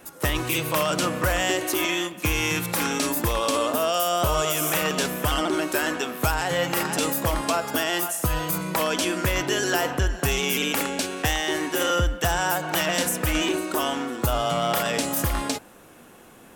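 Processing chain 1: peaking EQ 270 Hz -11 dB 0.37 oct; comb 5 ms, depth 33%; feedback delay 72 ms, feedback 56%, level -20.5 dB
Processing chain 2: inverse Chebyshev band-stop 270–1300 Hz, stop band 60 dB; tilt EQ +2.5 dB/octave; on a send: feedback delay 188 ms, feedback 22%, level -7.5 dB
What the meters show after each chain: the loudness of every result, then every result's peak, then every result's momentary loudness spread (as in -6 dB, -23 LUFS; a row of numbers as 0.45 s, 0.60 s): -24.0 LUFS, -21.0 LUFS; -9.5 dBFS, -2.5 dBFS; 3 LU, 6 LU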